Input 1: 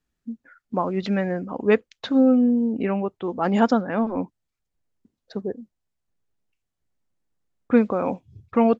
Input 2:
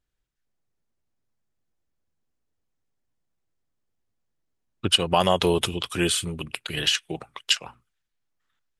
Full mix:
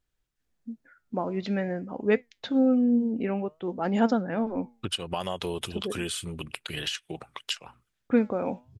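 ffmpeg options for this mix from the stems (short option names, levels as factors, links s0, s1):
-filter_complex "[0:a]flanger=delay=3.8:depth=5.4:regen=86:speed=0.56:shape=triangular,equalizer=f=1100:t=o:w=0.41:g=-7,adelay=400,volume=1[s0];[1:a]acompressor=threshold=0.0178:ratio=2.5,volume=1.12[s1];[s0][s1]amix=inputs=2:normalize=0"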